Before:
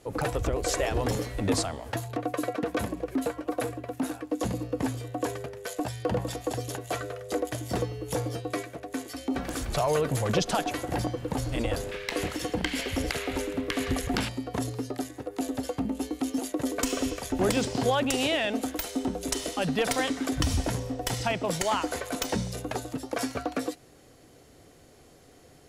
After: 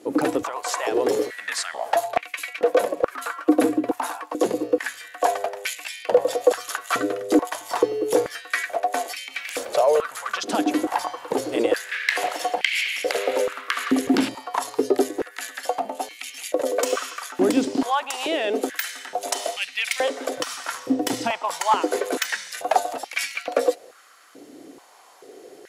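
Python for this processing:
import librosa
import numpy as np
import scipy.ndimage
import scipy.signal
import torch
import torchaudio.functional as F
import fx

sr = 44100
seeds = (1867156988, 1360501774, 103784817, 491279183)

y = fx.rider(x, sr, range_db=10, speed_s=0.5)
y = fx.filter_held_highpass(y, sr, hz=2.3, low_hz=290.0, high_hz=2300.0)
y = y * 10.0 ** (3.5 / 20.0)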